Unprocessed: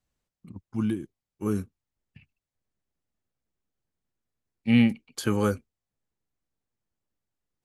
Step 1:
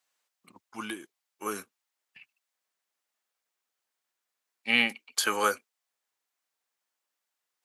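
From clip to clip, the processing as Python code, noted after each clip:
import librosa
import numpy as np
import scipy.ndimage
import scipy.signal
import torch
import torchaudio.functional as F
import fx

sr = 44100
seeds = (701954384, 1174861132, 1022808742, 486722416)

y = scipy.signal.sosfilt(scipy.signal.butter(2, 870.0, 'highpass', fs=sr, output='sos'), x)
y = y * librosa.db_to_amplitude(8.0)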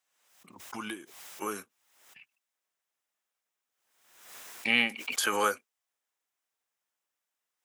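y = fx.peak_eq(x, sr, hz=4400.0, db=-6.0, octaves=0.2)
y = fx.pre_swell(y, sr, db_per_s=61.0)
y = y * librosa.db_to_amplitude(-2.0)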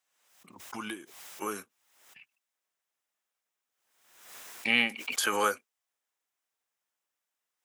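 y = x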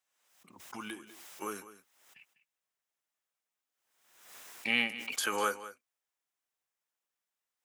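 y = x + 10.0 ** (-15.0 / 20.0) * np.pad(x, (int(199 * sr / 1000.0), 0))[:len(x)]
y = y * librosa.db_to_amplitude(-4.0)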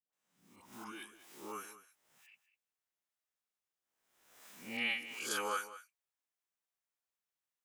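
y = fx.spec_swells(x, sr, rise_s=0.42)
y = fx.dispersion(y, sr, late='highs', ms=130.0, hz=680.0)
y = y * librosa.db_to_amplitude(-7.0)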